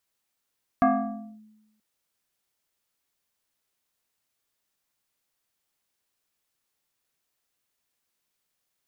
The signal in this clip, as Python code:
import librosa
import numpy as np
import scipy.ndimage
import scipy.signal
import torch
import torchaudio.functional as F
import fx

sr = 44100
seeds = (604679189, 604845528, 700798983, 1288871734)

y = fx.fm2(sr, length_s=0.98, level_db=-14.5, carrier_hz=215.0, ratio=2.21, index=2.1, index_s=0.58, decay_s=1.05, shape='linear')